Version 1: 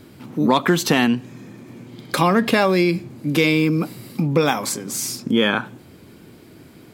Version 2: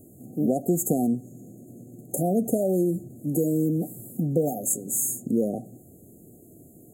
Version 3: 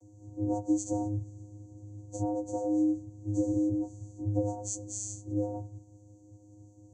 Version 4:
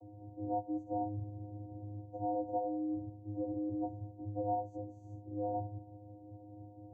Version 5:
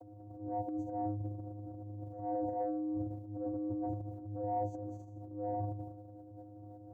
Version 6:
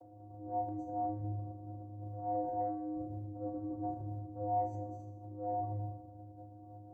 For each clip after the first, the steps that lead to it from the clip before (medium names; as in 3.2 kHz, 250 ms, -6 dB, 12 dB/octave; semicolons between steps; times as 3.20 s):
FFT band-reject 770–6400 Hz; treble shelf 6.2 kHz +10.5 dB; trim -5.5 dB
partials quantised in pitch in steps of 4 st; vocoder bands 16, square 103 Hz; trim -6.5 dB
reverse; compression 6:1, threshold -39 dBFS, peak gain reduction 15.5 dB; reverse; resonant low-pass 760 Hz, resonance Q 4.4; trim +1 dB
transient shaper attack -8 dB, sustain +10 dB
reverberation RT60 0.90 s, pre-delay 5 ms, DRR 0.5 dB; trim -4.5 dB